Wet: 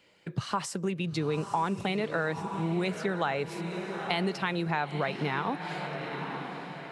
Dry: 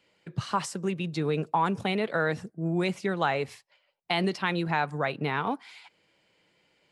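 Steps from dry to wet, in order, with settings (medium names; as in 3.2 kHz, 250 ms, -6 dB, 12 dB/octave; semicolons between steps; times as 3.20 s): on a send: echo that smears into a reverb 908 ms, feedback 42%, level -11 dB; on the sum: compression 2:1, threshold -36 dBFS, peak gain reduction 9 dB; trim +4.5 dB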